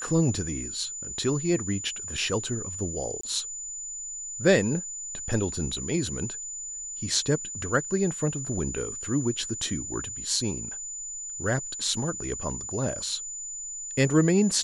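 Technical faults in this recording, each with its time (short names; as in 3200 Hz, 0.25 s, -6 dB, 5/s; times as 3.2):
tone 7000 Hz -34 dBFS
3.21–3.23 gap 24 ms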